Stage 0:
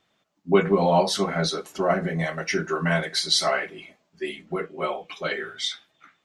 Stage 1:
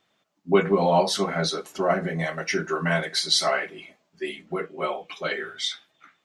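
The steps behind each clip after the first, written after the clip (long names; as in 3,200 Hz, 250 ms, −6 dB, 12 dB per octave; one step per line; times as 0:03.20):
low-shelf EQ 110 Hz −6.5 dB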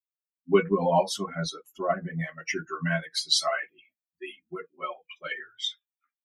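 spectral dynamics exaggerated over time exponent 2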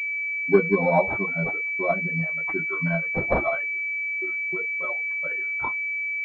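noise gate −50 dBFS, range −27 dB
switching amplifier with a slow clock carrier 2,300 Hz
level +3 dB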